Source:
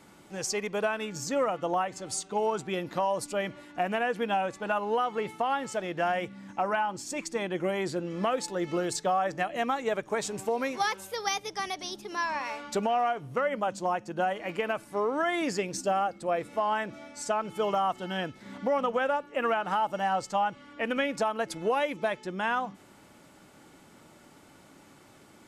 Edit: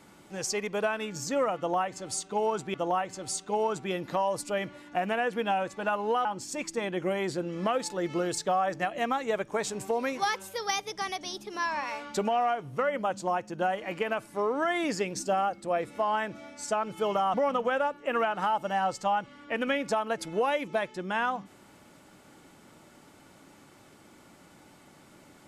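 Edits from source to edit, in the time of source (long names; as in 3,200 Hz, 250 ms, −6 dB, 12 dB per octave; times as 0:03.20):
0:01.57–0:02.74: repeat, 2 plays
0:05.08–0:06.83: remove
0:17.92–0:18.63: remove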